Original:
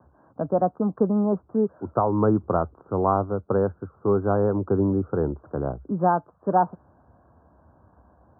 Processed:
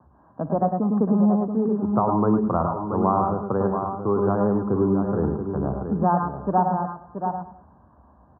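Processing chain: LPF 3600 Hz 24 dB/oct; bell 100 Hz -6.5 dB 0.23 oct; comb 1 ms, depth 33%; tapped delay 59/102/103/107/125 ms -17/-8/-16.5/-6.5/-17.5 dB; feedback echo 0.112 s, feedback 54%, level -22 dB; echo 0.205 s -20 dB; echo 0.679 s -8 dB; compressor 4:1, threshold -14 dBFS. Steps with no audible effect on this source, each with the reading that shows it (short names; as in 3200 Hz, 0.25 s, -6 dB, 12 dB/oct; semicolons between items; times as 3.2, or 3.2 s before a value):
LPF 3600 Hz: input band ends at 1400 Hz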